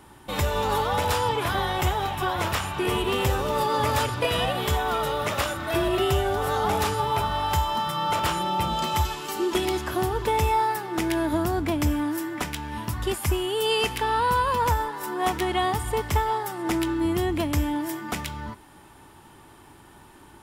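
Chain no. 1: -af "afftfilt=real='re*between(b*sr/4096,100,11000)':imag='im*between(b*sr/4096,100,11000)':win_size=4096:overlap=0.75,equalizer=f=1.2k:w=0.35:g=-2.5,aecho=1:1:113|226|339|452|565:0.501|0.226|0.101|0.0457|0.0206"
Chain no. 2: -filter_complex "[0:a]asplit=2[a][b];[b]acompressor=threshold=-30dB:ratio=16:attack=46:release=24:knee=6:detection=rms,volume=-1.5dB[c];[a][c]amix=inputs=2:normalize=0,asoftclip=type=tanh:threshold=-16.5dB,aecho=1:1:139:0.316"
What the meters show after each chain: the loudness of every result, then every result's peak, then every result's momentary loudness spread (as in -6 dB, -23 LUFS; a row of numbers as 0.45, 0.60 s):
-26.5, -23.5 LUFS; -12.5, -14.5 dBFS; 6, 4 LU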